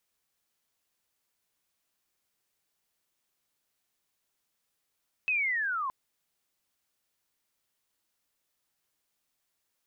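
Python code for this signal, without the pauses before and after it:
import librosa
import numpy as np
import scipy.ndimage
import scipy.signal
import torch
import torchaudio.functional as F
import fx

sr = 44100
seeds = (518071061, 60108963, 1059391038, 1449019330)

y = fx.chirp(sr, length_s=0.62, from_hz=2600.0, to_hz=1000.0, law='linear', from_db=-24.5, to_db=-29.5)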